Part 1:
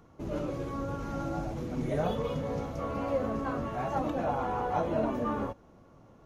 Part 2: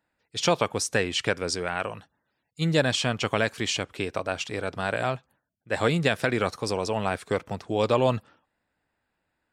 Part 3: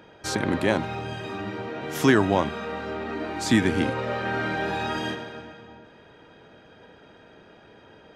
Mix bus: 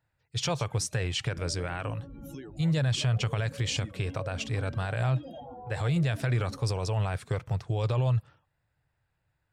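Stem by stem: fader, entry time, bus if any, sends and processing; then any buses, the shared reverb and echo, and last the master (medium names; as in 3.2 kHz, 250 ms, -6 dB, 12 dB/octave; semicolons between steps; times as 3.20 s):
-6.0 dB, 1.10 s, bus A, no send, spectral contrast enhancement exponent 2.1
-3.5 dB, 0.00 s, no bus, no send, resonant low shelf 170 Hz +9.5 dB, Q 3
-9.5 dB, 0.30 s, bus A, no send, expander on every frequency bin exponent 3
bus A: 0.0 dB, peaking EQ 1.2 kHz -12 dB 1.3 oct; compression 10:1, threshold -39 dBFS, peak gain reduction 13 dB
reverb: none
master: peak limiter -20 dBFS, peak gain reduction 9.5 dB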